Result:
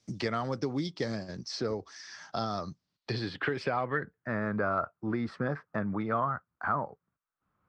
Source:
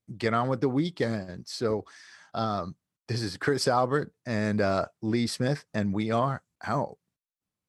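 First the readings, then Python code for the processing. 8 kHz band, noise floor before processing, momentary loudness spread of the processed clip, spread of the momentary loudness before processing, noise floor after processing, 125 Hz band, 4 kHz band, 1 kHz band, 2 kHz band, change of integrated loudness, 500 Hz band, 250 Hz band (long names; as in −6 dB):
−9.5 dB, below −85 dBFS, 8 LU, 9 LU, below −85 dBFS, −6.0 dB, −5.0 dB, −3.0 dB, −1.0 dB, −4.5 dB, −5.5 dB, −5.0 dB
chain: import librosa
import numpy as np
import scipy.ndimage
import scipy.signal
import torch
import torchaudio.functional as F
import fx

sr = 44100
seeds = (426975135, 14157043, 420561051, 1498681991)

y = fx.filter_sweep_lowpass(x, sr, from_hz=5600.0, to_hz=1300.0, start_s=2.69, end_s=4.43, q=4.0)
y = fx.band_squash(y, sr, depth_pct=70)
y = y * 10.0 ** (-6.5 / 20.0)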